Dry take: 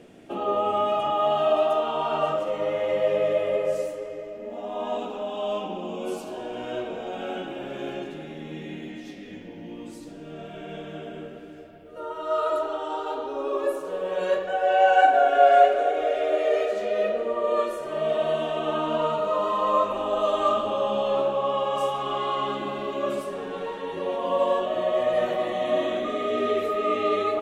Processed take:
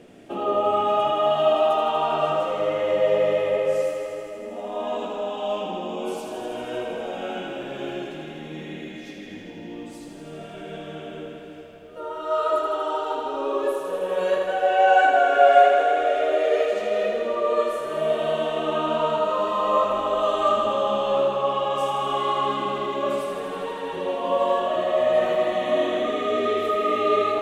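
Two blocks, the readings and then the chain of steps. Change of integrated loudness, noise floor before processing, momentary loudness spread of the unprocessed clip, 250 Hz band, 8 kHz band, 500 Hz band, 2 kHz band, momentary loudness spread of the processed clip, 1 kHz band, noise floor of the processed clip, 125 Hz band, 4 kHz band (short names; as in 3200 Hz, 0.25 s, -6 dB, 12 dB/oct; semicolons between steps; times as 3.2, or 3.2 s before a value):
+2.0 dB, -41 dBFS, 16 LU, +1.5 dB, n/a, +2.0 dB, +3.5 dB, 17 LU, +2.0 dB, -39 dBFS, +1.5 dB, +3.0 dB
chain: thinning echo 80 ms, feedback 84%, high-pass 290 Hz, level -7 dB; gain +1 dB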